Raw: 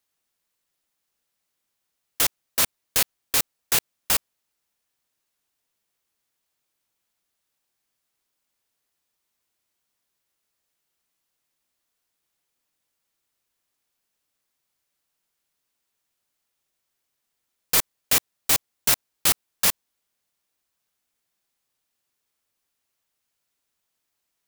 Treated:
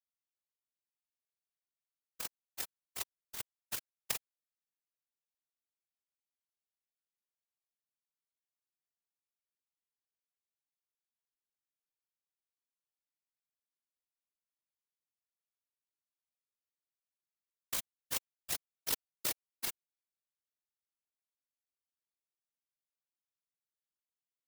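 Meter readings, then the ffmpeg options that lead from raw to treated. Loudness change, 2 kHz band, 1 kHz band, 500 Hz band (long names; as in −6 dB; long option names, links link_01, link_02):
−17.5 dB, −18.0 dB, −18.0 dB, −17.0 dB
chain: -af "aeval=exprs='0.562*(cos(1*acos(clip(val(0)/0.562,-1,1)))-cos(1*PI/2))+0.282*(cos(3*acos(clip(val(0)/0.562,-1,1)))-cos(3*PI/2))+0.0501*(cos(5*acos(clip(val(0)/0.562,-1,1)))-cos(5*PI/2))':channel_layout=same,aeval=exprs='val(0)*sin(2*PI*25*n/s)':channel_layout=same,afftfilt=real='hypot(re,im)*cos(2*PI*random(0))':imag='hypot(re,im)*sin(2*PI*random(1))':win_size=512:overlap=0.75,volume=9dB"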